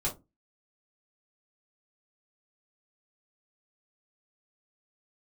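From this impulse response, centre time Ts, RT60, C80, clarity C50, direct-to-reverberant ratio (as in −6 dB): 18 ms, 0.20 s, 22.5 dB, 12.5 dB, −5.0 dB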